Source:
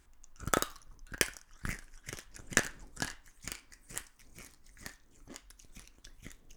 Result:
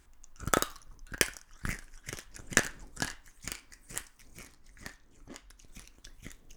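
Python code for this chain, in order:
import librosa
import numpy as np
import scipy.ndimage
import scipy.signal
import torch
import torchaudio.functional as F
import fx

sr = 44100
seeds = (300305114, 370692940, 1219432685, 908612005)

y = fx.high_shelf(x, sr, hz=6100.0, db=-7.0, at=(4.43, 5.68))
y = F.gain(torch.from_numpy(y), 2.5).numpy()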